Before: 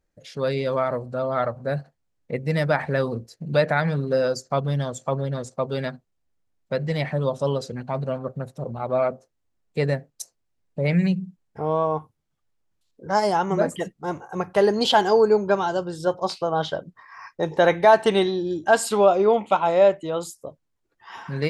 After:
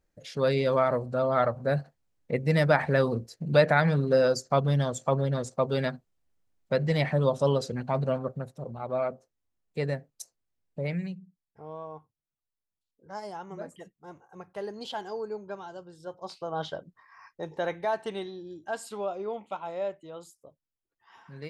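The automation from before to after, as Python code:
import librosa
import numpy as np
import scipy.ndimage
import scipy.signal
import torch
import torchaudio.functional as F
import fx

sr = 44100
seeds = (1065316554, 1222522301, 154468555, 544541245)

y = fx.gain(x, sr, db=fx.line((8.16, -0.5), (8.57, -7.0), (10.79, -7.0), (11.21, -18.0), (16.04, -18.0), (16.62, -8.0), (18.26, -16.0)))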